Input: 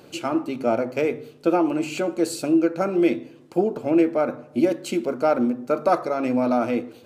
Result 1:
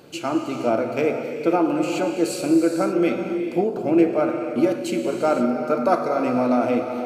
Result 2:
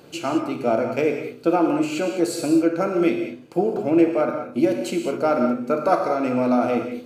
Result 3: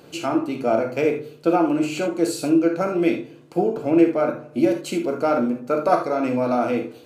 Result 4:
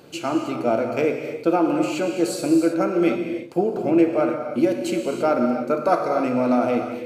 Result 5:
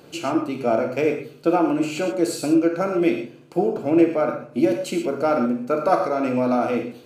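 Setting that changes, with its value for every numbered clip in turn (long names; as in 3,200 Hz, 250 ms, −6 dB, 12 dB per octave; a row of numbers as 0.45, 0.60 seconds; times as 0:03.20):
reverb whose tail is shaped and stops, gate: 540, 230, 100, 350, 150 milliseconds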